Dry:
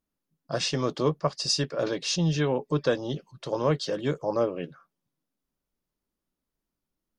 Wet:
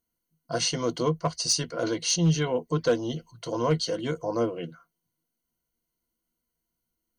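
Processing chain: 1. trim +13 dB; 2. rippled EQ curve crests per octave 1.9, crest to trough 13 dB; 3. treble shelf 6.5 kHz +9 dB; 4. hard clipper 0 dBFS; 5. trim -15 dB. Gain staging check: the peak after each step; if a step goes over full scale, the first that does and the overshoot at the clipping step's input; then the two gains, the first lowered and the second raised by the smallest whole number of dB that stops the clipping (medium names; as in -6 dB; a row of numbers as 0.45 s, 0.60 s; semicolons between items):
+1.5 dBFS, +5.0 dBFS, +5.0 dBFS, 0.0 dBFS, -15.0 dBFS; step 1, 5.0 dB; step 1 +8 dB, step 5 -10 dB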